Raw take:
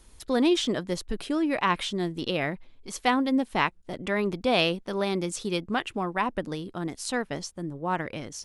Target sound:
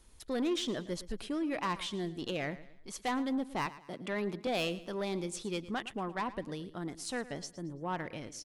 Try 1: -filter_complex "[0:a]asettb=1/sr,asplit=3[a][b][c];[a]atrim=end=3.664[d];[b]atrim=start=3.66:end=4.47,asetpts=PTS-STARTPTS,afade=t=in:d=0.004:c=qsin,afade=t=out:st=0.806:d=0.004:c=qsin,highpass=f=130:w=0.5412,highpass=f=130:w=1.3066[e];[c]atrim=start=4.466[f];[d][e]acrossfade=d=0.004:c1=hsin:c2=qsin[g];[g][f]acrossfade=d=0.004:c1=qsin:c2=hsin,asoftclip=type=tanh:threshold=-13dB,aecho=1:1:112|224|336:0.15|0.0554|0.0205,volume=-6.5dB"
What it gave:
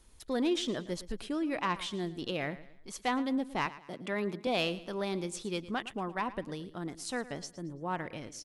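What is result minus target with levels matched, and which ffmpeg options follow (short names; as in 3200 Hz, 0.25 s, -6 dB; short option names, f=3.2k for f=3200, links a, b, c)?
soft clip: distortion -9 dB
-filter_complex "[0:a]asettb=1/sr,asplit=3[a][b][c];[a]atrim=end=3.664[d];[b]atrim=start=3.66:end=4.47,asetpts=PTS-STARTPTS,afade=t=in:d=0.004:c=qsin,afade=t=out:st=0.806:d=0.004:c=qsin,highpass=f=130:w=0.5412,highpass=f=130:w=1.3066[e];[c]atrim=start=4.466[f];[d][e]acrossfade=d=0.004:c1=hsin:c2=qsin[g];[g][f]acrossfade=d=0.004:c1=qsin:c2=hsin,asoftclip=type=tanh:threshold=-20dB,aecho=1:1:112|224|336:0.15|0.0554|0.0205,volume=-6.5dB"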